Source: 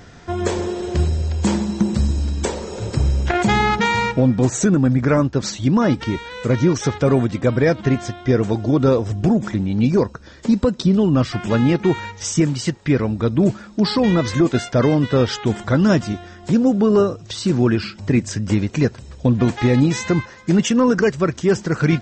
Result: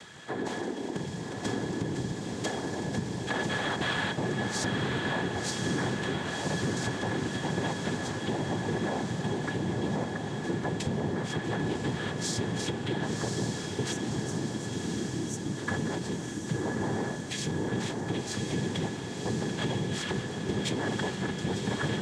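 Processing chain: noise-vocoded speech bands 6; peak limiter -10.5 dBFS, peak gain reduction 10 dB; compression, threshold -22 dBFS, peak gain reduction 7.5 dB; small resonant body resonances 1.7/3.3 kHz, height 15 dB, ringing for 70 ms; spectral selection erased 13.93–15.57 s, 370–5500 Hz; echo that smears into a reverb 1072 ms, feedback 66%, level -3 dB; tape noise reduction on one side only encoder only; trim -7.5 dB

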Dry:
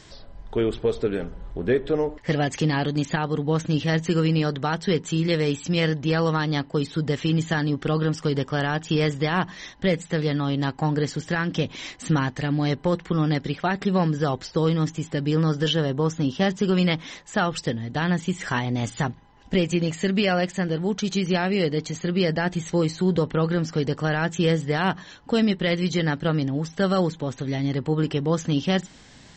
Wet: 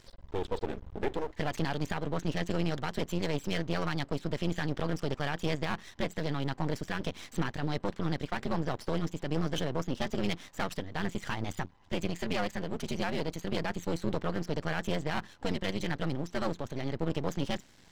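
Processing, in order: granular stretch 0.61×, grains 22 ms; half-wave rectifier; trim -5 dB

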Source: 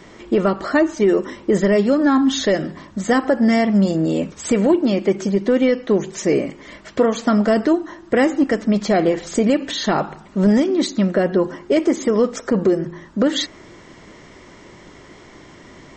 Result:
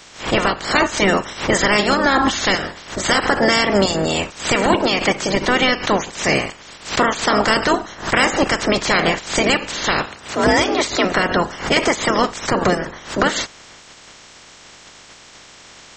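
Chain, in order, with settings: spectral peaks clipped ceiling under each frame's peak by 26 dB; 10.06–11.05 s: frequency shift +51 Hz; swell ahead of each attack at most 140 dB/s

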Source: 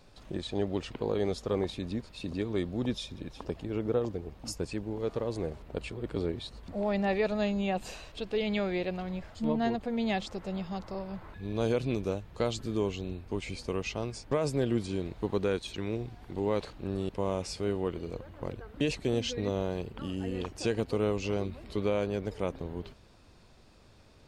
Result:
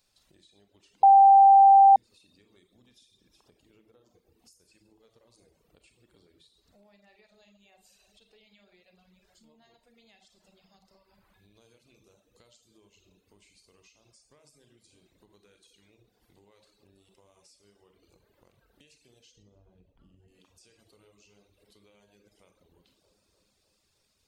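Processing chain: 19.36–20.28 s: tilt EQ -4 dB/octave; feedback echo behind a low-pass 303 ms, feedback 61%, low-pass 1.3 kHz, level -16 dB; reverberation RT60 0.90 s, pre-delay 28 ms, DRR 2 dB; reverb removal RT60 0.73 s; pre-emphasis filter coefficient 0.9; compression 5:1, threshold -58 dBFS, peak gain reduction 20 dB; 1.03–1.96 s: bleep 786 Hz -9 dBFS; trim -2.5 dB

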